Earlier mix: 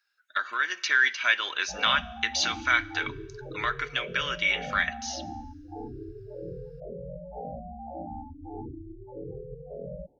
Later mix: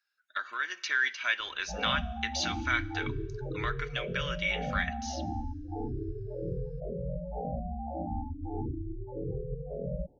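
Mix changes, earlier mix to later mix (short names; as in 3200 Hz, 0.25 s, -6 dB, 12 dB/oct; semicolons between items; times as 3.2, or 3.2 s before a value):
speech -6.0 dB; background: add low shelf 190 Hz +9.5 dB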